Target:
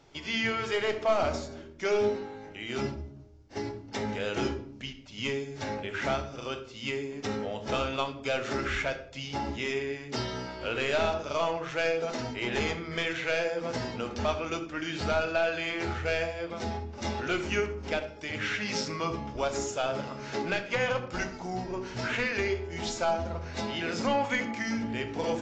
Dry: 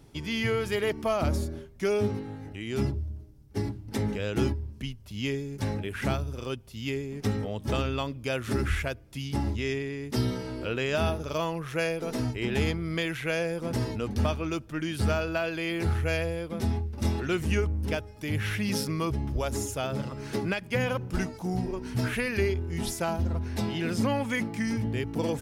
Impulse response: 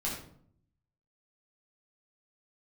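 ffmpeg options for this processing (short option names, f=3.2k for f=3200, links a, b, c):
-filter_complex "[0:a]bass=f=250:g=-14,treble=f=4k:g=-2,bandreject=f=50:t=h:w=6,bandreject=f=100:t=h:w=6,bandreject=f=150:t=h:w=6,bandreject=f=200:t=h:w=6,bandreject=f=250:t=h:w=6,bandreject=f=300:t=h:w=6,bandreject=f=350:t=h:w=6,bandreject=f=400:t=h:w=6,bandreject=f=450:t=h:w=6,bandreject=f=500:t=h:w=6,aeval=exprs='clip(val(0),-1,0.0668)':c=same,asplit=2[a][b];[1:a]atrim=start_sample=2205[c];[b][c]afir=irnorm=-1:irlink=0,volume=-8dB[d];[a][d]amix=inputs=2:normalize=0" -ar 16000 -c:a aac -b:a 32k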